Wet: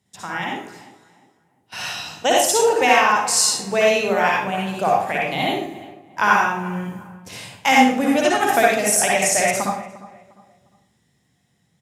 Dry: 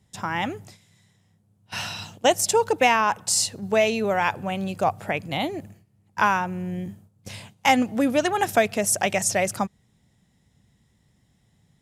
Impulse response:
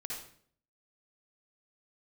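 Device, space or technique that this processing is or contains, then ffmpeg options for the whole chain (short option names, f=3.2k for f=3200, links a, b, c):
far laptop microphone: -filter_complex "[0:a]equalizer=f=170:w=0.33:g=-3.5,bandreject=f=50:t=h:w=6,bandreject=f=100:t=h:w=6,bandreject=f=150:t=h:w=6,bandreject=f=200:t=h:w=6[a];[1:a]atrim=start_sample=2205[b];[a][b]afir=irnorm=-1:irlink=0,highpass=100,dynaudnorm=f=800:g=5:m=5dB,asplit=2[c][d];[d]adelay=352,lowpass=f=1.9k:p=1,volume=-17dB,asplit=2[e][f];[f]adelay=352,lowpass=f=1.9k:p=1,volume=0.35,asplit=2[g][h];[h]adelay=352,lowpass=f=1.9k:p=1,volume=0.35[i];[c][e][g][i]amix=inputs=4:normalize=0,volume=2.5dB"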